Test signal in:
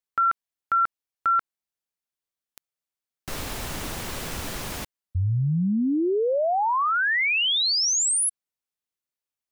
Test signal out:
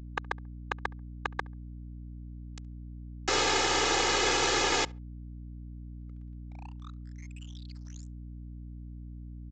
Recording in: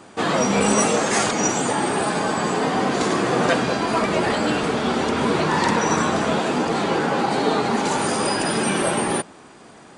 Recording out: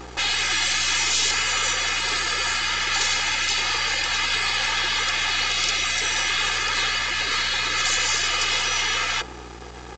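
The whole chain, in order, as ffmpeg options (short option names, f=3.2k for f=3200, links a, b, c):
-filter_complex "[0:a]afftfilt=real='re*lt(hypot(re,im),0.1)':imag='im*lt(hypot(re,im),0.1)':win_size=1024:overlap=0.75,highpass=240,aecho=1:1:2.4:0.87,aeval=exprs='0.224*(cos(1*acos(clip(val(0)/0.224,-1,1)))-cos(1*PI/2))+0.0501*(cos(4*acos(clip(val(0)/0.224,-1,1)))-cos(4*PI/2))+0.02*(cos(5*acos(clip(val(0)/0.224,-1,1)))-cos(5*PI/2))+0.0398*(cos(6*acos(clip(val(0)/0.224,-1,1)))-cos(6*PI/2))':c=same,aresample=16000,aeval=exprs='sgn(val(0))*max(abs(val(0))-0.00631,0)':c=same,aresample=44100,aeval=exprs='val(0)+0.00447*(sin(2*PI*60*n/s)+sin(2*PI*2*60*n/s)/2+sin(2*PI*3*60*n/s)/3+sin(2*PI*4*60*n/s)/4+sin(2*PI*5*60*n/s)/5)':c=same,asplit=2[a][b];[b]adelay=69,lowpass=f=1.8k:p=1,volume=-23.5dB,asplit=2[c][d];[d]adelay=69,lowpass=f=1.8k:p=1,volume=0.28[e];[c][e]amix=inputs=2:normalize=0[f];[a][f]amix=inputs=2:normalize=0,volume=5.5dB"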